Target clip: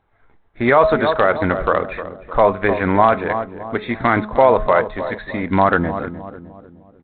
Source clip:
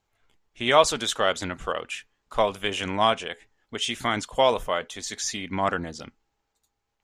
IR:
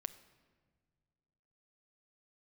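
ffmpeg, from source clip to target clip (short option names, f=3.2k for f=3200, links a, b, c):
-filter_complex "[0:a]asuperstop=centerf=3000:order=4:qfactor=1.2,bandreject=f=212.5:t=h:w=4,bandreject=f=425:t=h:w=4,bandreject=f=637.5:t=h:w=4,bandreject=f=850:t=h:w=4,bandreject=f=1.0625k:t=h:w=4,bandreject=f=1.275k:t=h:w=4,asplit=2[a][b];[b]adelay=305,lowpass=f=870:p=1,volume=-11.5dB,asplit=2[c][d];[d]adelay=305,lowpass=f=870:p=1,volume=0.49,asplit=2[e][f];[f]adelay=305,lowpass=f=870:p=1,volume=0.49,asplit=2[g][h];[h]adelay=305,lowpass=f=870:p=1,volume=0.49,asplit=2[i][j];[j]adelay=305,lowpass=f=870:p=1,volume=0.49[k];[c][e][g][i][k]amix=inputs=5:normalize=0[l];[a][l]amix=inputs=2:normalize=0,alimiter=level_in=14dB:limit=-1dB:release=50:level=0:latency=1,volume=-1dB" -ar 8000 -c:a adpcm_g726 -b:a 32k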